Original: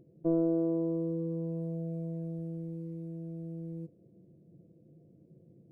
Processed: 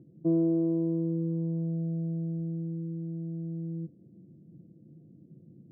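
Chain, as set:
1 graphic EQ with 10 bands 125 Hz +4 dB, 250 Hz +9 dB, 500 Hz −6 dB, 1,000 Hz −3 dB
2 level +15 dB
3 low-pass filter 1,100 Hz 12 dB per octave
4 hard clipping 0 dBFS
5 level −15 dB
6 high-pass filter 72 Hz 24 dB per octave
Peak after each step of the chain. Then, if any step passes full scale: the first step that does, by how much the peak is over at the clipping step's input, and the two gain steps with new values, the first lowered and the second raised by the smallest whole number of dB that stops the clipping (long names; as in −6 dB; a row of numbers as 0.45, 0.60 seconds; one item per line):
−18.5, −3.5, −3.5, −3.5, −18.5, −18.5 dBFS
no step passes full scale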